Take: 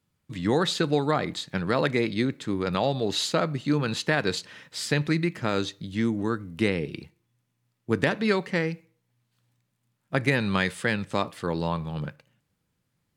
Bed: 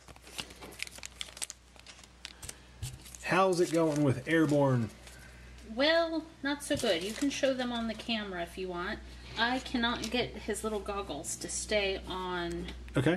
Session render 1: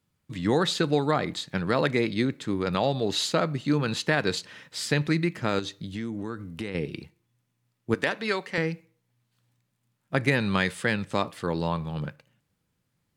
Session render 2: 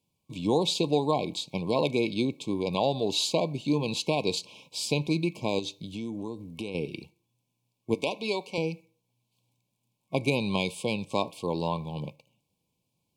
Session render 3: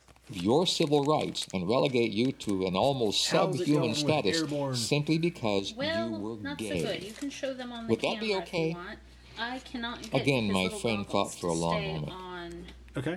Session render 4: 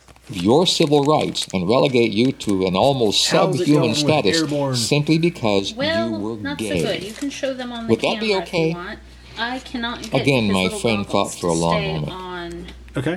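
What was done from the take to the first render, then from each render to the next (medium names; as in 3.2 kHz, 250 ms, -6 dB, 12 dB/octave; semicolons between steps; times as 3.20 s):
5.59–6.75 s: compression 5:1, threshold -29 dBFS; 7.94–8.58 s: high-pass 580 Hz 6 dB/octave
bass shelf 130 Hz -9 dB; FFT band-reject 1.1–2.2 kHz
add bed -5 dB
trim +10.5 dB; peak limiter -3 dBFS, peak gain reduction 2.5 dB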